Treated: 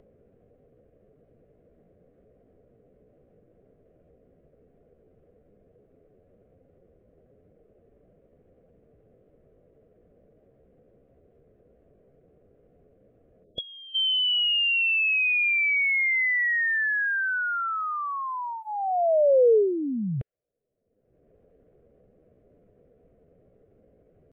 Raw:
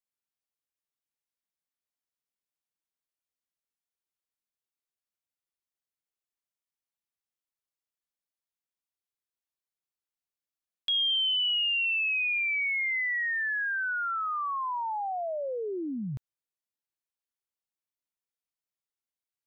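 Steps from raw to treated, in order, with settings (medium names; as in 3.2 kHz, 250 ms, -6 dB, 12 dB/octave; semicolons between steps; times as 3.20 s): high-order bell 610 Hz +14.5 dB 1.3 oct; level-controlled noise filter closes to 320 Hz, open at -28 dBFS; tempo 0.8×; static phaser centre 2.1 kHz, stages 4; upward compressor, threshold -32 dBFS; time-frequency box 13.44–13.95 s, 730–3300 Hz -20 dB; trim +5.5 dB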